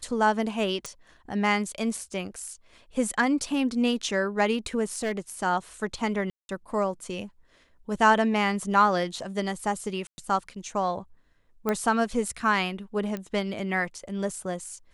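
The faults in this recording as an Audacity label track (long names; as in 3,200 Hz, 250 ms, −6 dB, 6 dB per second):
0.860000	0.860000	click
4.960000	5.300000	clipping −23.5 dBFS
6.300000	6.490000	drop-out 191 ms
10.070000	10.180000	drop-out 110 ms
11.690000	11.690000	click −13 dBFS
13.170000	13.170000	click −20 dBFS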